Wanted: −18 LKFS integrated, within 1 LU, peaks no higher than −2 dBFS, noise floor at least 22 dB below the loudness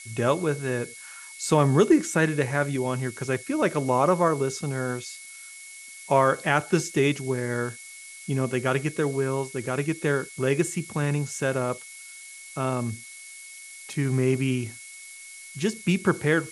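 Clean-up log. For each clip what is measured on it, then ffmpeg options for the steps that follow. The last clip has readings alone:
interfering tone 2,200 Hz; level of the tone −45 dBFS; background noise floor −44 dBFS; target noise floor −48 dBFS; integrated loudness −25.5 LKFS; sample peak −6.5 dBFS; target loudness −18.0 LKFS
→ -af "bandreject=frequency=2200:width=30"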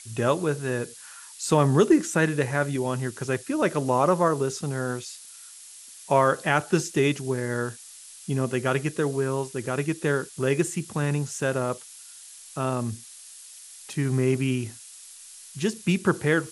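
interfering tone none found; background noise floor −46 dBFS; target noise floor −48 dBFS
→ -af "afftdn=noise_reduction=6:noise_floor=-46"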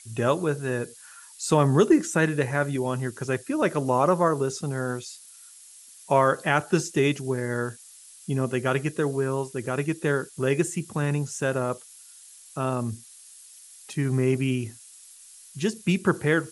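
background noise floor −49 dBFS; integrated loudness −25.5 LKFS; sample peak −7.0 dBFS; target loudness −18.0 LKFS
→ -af "volume=7.5dB,alimiter=limit=-2dB:level=0:latency=1"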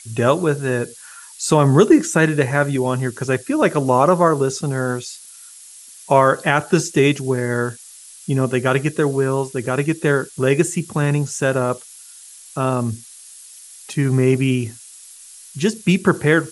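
integrated loudness −18.5 LKFS; sample peak −2.0 dBFS; background noise floor −42 dBFS

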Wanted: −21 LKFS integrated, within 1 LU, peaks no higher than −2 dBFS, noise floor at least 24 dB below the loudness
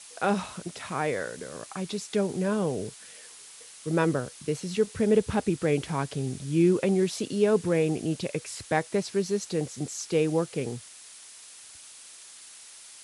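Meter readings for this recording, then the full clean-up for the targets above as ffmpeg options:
background noise floor −48 dBFS; target noise floor −52 dBFS; integrated loudness −28.0 LKFS; sample peak −11.0 dBFS; target loudness −21.0 LKFS
→ -af "afftdn=noise_reduction=6:noise_floor=-48"
-af "volume=7dB"

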